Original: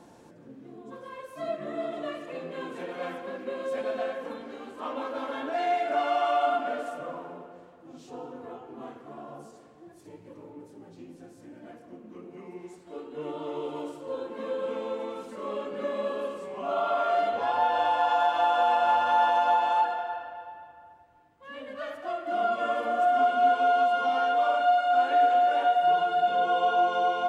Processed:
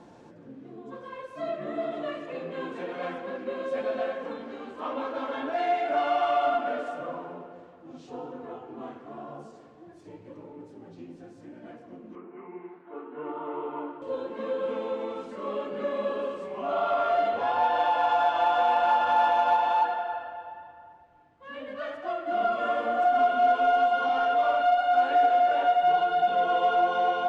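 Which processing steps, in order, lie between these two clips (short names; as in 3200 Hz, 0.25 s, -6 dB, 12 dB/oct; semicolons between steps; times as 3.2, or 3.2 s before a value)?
12.15–14.02 speaker cabinet 250–2300 Hz, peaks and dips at 530 Hz -8 dB, 990 Hz +5 dB, 1400 Hz +5 dB; flange 0.95 Hz, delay 4.4 ms, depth 8 ms, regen -65%; air absorption 88 m; in parallel at -8.5 dB: soft clip -31 dBFS, distortion -9 dB; on the sum: gain +3.5 dB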